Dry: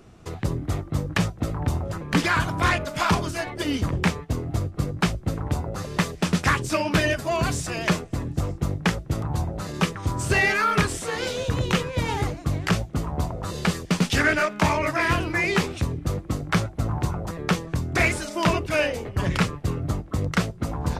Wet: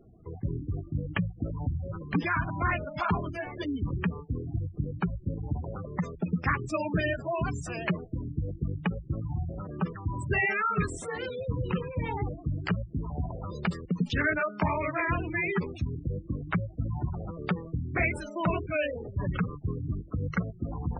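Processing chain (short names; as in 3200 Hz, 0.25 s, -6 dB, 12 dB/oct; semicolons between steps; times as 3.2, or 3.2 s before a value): steep low-pass 11000 Hz; spectral gate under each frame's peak -15 dB strong; gain -5.5 dB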